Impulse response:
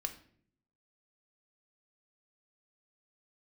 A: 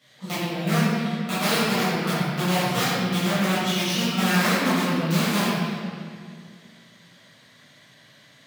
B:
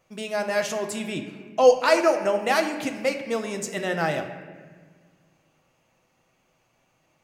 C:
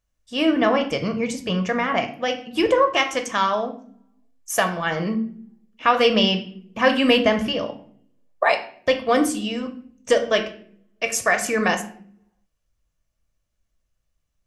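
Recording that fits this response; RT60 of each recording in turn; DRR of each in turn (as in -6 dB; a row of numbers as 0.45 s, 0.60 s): C; 2.1 s, 1.6 s, 0.60 s; -12.5 dB, 4.0 dB, 5.5 dB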